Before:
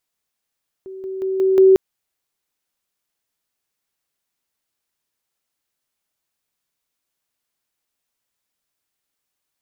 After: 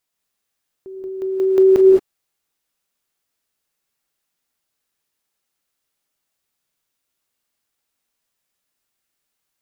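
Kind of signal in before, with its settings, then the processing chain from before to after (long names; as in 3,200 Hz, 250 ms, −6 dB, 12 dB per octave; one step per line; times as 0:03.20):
level staircase 381 Hz −31 dBFS, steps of 6 dB, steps 5, 0.18 s 0.00 s
reverb whose tail is shaped and stops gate 240 ms rising, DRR 1 dB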